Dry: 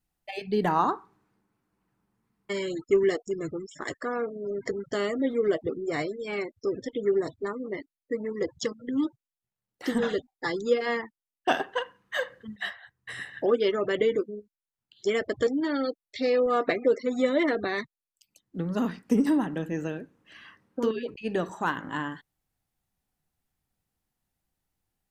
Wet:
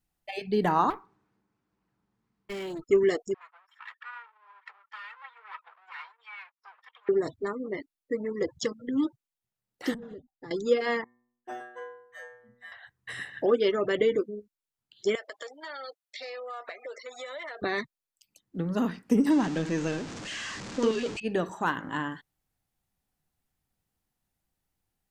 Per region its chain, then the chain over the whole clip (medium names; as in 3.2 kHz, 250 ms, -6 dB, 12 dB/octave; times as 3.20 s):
0.90–2.83 s: valve stage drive 31 dB, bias 0.55 + decimation joined by straight lines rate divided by 3×
3.34–7.09 s: comb filter that takes the minimum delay 2.2 ms + elliptic high-pass 1 kHz, stop band 70 dB + distance through air 460 m
9.94–10.51 s: FFT filter 160 Hz 0 dB, 700 Hz -10 dB, 3.1 kHz -21 dB + compression 16:1, threshold -38 dBFS
11.04–12.72 s: high-order bell 3.7 kHz -8 dB 1.1 oct + band-stop 2.8 kHz, Q 25 + inharmonic resonator 120 Hz, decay 0.76 s, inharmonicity 0.002
15.15–17.62 s: high-pass 650 Hz 24 dB/octave + compression, threshold -36 dBFS
19.30–21.20 s: jump at every zero crossing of -35 dBFS + steep low-pass 7.4 kHz + treble shelf 4.6 kHz +10 dB
whole clip: none